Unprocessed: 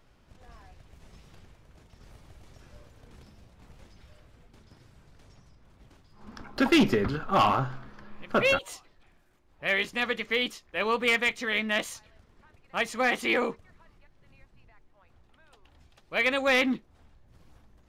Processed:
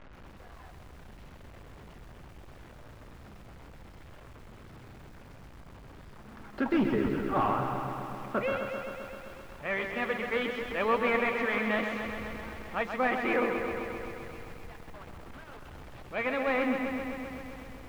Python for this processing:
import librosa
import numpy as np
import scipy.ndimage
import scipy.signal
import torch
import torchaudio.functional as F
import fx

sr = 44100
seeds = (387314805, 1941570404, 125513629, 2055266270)

y = fx.delta_mod(x, sr, bps=64000, step_db=-37.0)
y = scipy.signal.sosfilt(scipy.signal.butter(2, 2100.0, 'lowpass', fs=sr, output='sos'), y)
y = fx.rider(y, sr, range_db=4, speed_s=2.0)
y = y + 10.0 ** (-14.0 / 20.0) * np.pad(y, (int(245 * sr / 1000.0), 0))[:len(y)]
y = fx.echo_crushed(y, sr, ms=130, feedback_pct=80, bits=9, wet_db=-6.5)
y = y * 10.0 ** (-2.0 / 20.0)